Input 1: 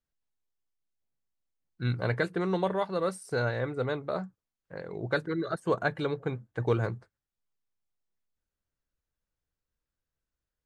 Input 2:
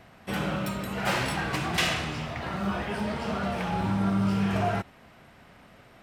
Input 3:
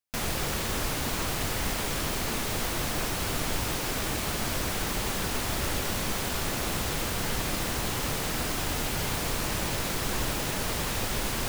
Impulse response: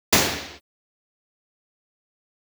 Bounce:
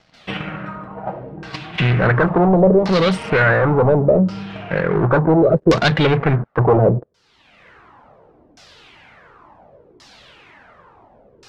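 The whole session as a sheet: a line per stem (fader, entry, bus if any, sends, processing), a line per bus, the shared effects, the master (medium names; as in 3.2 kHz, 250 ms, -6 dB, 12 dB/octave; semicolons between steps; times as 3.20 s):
+1.5 dB, 0.00 s, bus A, no send, resonant low shelf 110 Hz -8.5 dB, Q 3; waveshaping leveller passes 5
-4.5 dB, 0.00 s, bus A, no send, gain riding within 5 dB 0.5 s; comb 6.4 ms, depth 43%; crossover distortion -49.5 dBFS
-11.0 dB, 0.00 s, no bus, no send, high-pass 280 Hz 6 dB/octave; Shepard-style flanger falling 1.9 Hz; auto duck -20 dB, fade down 1.90 s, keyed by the first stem
bus A: 0.0 dB, transient shaper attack +8 dB, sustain +4 dB; peak limiter -11 dBFS, peak gain reduction 7.5 dB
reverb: none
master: LFO low-pass saw down 0.7 Hz 380–5600 Hz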